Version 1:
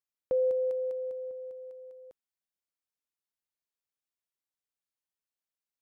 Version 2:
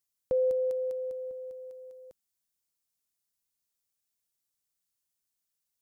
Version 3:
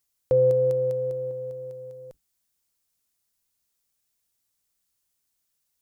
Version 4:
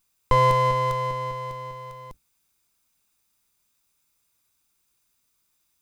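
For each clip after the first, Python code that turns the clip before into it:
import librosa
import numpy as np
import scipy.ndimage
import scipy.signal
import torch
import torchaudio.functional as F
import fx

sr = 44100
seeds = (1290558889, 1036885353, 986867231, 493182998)

y1 = fx.bass_treble(x, sr, bass_db=7, treble_db=11)
y2 = fx.octave_divider(y1, sr, octaves=2, level_db=-1.0)
y2 = y2 * librosa.db_to_amplitude(7.0)
y3 = fx.lower_of_two(y2, sr, delay_ms=0.82)
y3 = y3 * librosa.db_to_amplitude(6.5)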